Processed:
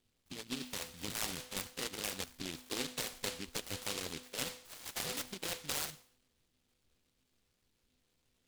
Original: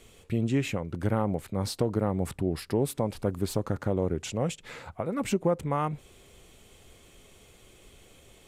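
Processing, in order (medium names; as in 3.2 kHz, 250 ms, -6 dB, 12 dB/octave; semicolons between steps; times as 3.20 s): spectrogram pixelated in time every 50 ms; spectral noise reduction 17 dB; harmonic-percussive split harmonic -17 dB; compression 2.5:1, threshold -44 dBFS, peak gain reduction 12.5 dB; resonant low-pass 1 kHz, resonance Q 2.3; feedback comb 250 Hz, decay 0.55 s, harmonics all, mix 80%; delay time shaken by noise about 3.3 kHz, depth 0.41 ms; trim +13.5 dB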